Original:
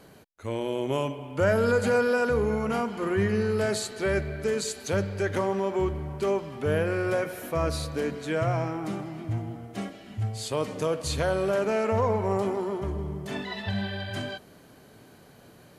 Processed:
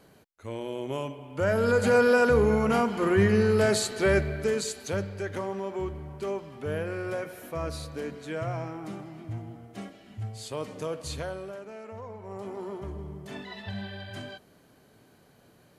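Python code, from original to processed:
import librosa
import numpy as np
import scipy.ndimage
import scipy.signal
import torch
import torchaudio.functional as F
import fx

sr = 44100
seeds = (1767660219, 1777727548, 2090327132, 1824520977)

y = fx.gain(x, sr, db=fx.line((1.26, -5.0), (2.07, 3.5), (4.12, 3.5), (5.26, -6.0), (11.13, -6.0), (11.64, -17.0), (12.18, -17.0), (12.65, -6.5)))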